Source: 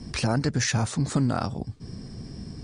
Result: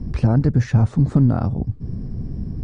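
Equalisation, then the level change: tilt EQ -3.5 dB/octave; treble shelf 2.6 kHz -8.5 dB; 0.0 dB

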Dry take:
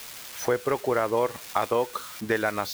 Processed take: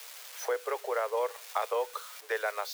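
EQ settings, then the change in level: steep high-pass 420 Hz 72 dB/octave; -5.5 dB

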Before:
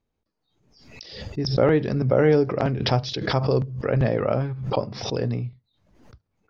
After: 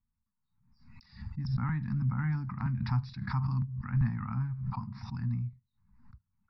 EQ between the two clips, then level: boxcar filter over 14 samples; elliptic band-stop 230–940 Hz, stop band 40 dB; bass shelf 120 Hz +5 dB; -6.5 dB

